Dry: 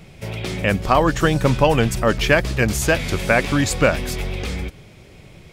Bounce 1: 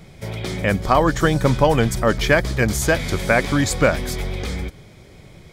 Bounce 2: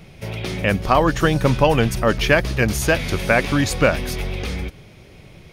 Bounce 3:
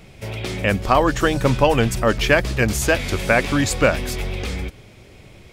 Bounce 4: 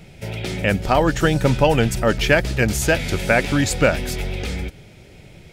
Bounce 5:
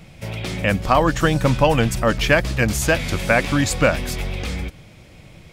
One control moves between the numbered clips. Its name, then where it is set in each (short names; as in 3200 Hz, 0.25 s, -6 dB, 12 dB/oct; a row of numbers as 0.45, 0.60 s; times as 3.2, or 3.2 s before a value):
notch, frequency: 2700, 7600, 160, 1100, 400 Hz